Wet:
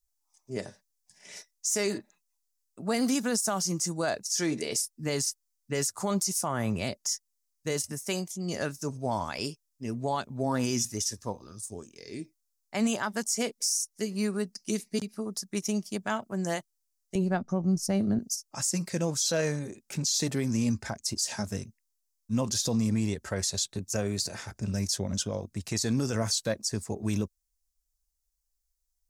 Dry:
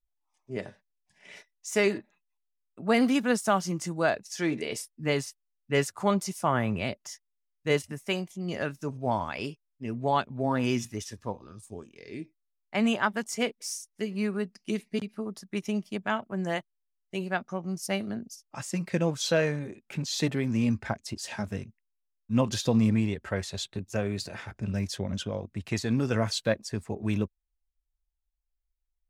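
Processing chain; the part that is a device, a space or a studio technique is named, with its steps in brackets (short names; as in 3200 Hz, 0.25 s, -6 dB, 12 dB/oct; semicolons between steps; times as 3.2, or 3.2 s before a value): 17.15–18.19 tilt -3.5 dB/oct; over-bright horn tweeter (resonant high shelf 4100 Hz +11.5 dB, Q 1.5; limiter -18.5 dBFS, peak gain reduction 9.5 dB)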